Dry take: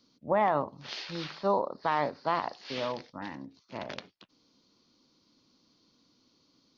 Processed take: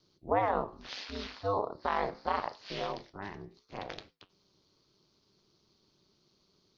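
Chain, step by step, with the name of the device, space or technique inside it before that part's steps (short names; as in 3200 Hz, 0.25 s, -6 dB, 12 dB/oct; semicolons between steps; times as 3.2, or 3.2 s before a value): alien voice (ring modulator 100 Hz; flange 0.73 Hz, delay 8.5 ms, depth 9.7 ms, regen -76%); gain +4.5 dB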